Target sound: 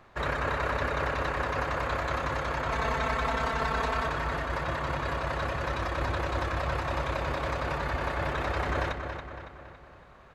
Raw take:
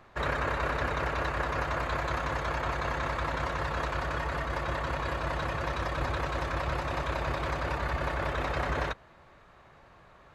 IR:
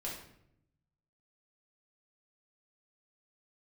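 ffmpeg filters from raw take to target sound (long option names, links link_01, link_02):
-filter_complex "[0:a]asettb=1/sr,asplit=3[link_01][link_02][link_03];[link_01]atrim=end=2.714[link_04];[link_02]atrim=start=2.71:end=4.08,asetpts=PTS-STARTPTS,afade=type=in:duration=0.004:curve=qsin,afade=type=out:start_time=1.366:duration=0.004:curve=qsin,aecho=1:1:4.5:0.93,atrim=end_sample=60417[link_05];[link_03]atrim=start=4.076[link_06];[link_04][link_05]acrossfade=duration=0.004:curve1=hsin:curve2=qsin[link_07];[link_07][link_06]acrossfade=duration=0.004:curve1=qsin:curve2=hsin,asplit=2[link_08][link_09];[link_09]adelay=279,lowpass=frequency=5000:poles=1,volume=-7dB,asplit=2[link_10][link_11];[link_11]adelay=279,lowpass=frequency=5000:poles=1,volume=0.52,asplit=2[link_12][link_13];[link_13]adelay=279,lowpass=frequency=5000:poles=1,volume=0.52,asplit=2[link_14][link_15];[link_15]adelay=279,lowpass=frequency=5000:poles=1,volume=0.52,asplit=2[link_16][link_17];[link_17]adelay=279,lowpass=frequency=5000:poles=1,volume=0.52,asplit=2[link_18][link_19];[link_19]adelay=279,lowpass=frequency=5000:poles=1,volume=0.52[link_20];[link_08][link_10][link_12][link_14][link_16][link_18][link_20]amix=inputs=7:normalize=0"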